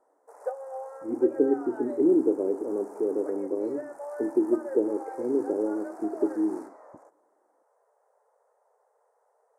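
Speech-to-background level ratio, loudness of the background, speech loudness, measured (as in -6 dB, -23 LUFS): 13.0 dB, -40.5 LUFS, -27.5 LUFS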